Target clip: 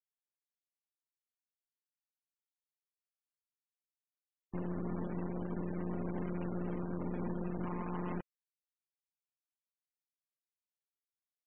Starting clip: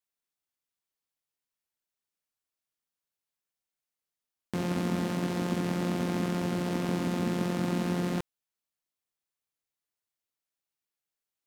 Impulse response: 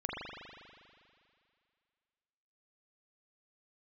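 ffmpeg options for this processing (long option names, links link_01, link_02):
-filter_complex "[0:a]asettb=1/sr,asplit=3[link_01][link_02][link_03];[link_01]atrim=end=7.654[link_04];[link_02]atrim=start=7.65:end=8.16,asetpts=PTS-STARTPTS,afade=type=in:duration=0.004:curve=qsin,afade=type=out:start_time=0.506:duration=0.004:curve=qsin,equalizer=frequency=1000:width_type=o:width=0.63:gain=11.5[link_05];[link_03]atrim=start=8.156[link_06];[link_04][link_05]acrossfade=duration=0.004:curve1=hsin:curve2=qsin[link_07];[link_07][link_06]acrossfade=duration=0.004:curve1=qsin:curve2=hsin,alimiter=level_in=3dB:limit=-24dB:level=0:latency=1:release=45,volume=-3dB,aeval=exprs='0.0447*(cos(1*acos(clip(val(0)/0.0447,-1,1)))-cos(1*PI/2))+0.0126*(cos(4*acos(clip(val(0)/0.0447,-1,1)))-cos(4*PI/2))':channel_layout=same,afftfilt=real='re*gte(hypot(re,im),0.0126)':imag='im*gte(hypot(re,im),0.0126)':win_size=1024:overlap=0.75,volume=-4.5dB"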